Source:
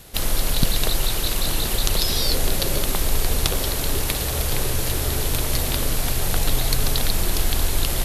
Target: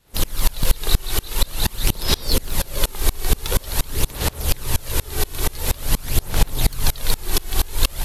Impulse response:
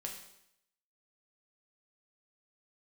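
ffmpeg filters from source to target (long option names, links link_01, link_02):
-filter_complex "[0:a]aphaser=in_gain=1:out_gain=1:delay=2.7:decay=0.39:speed=0.47:type=sinusoidal,aeval=exprs='0.473*(abs(mod(val(0)/0.473+3,4)-2)-1)':channel_layout=same,asplit=2[link_01][link_02];[link_02]highpass=frequency=850:width_type=q:width=6.1[link_03];[1:a]atrim=start_sample=2205[link_04];[link_03][link_04]afir=irnorm=-1:irlink=0,volume=-14.5dB[link_05];[link_01][link_05]amix=inputs=2:normalize=0,aeval=exprs='val(0)*pow(10,-29*if(lt(mod(-4.2*n/s,1),2*abs(-4.2)/1000),1-mod(-4.2*n/s,1)/(2*abs(-4.2)/1000),(mod(-4.2*n/s,1)-2*abs(-4.2)/1000)/(1-2*abs(-4.2)/1000))/20)':channel_layout=same,volume=5.5dB"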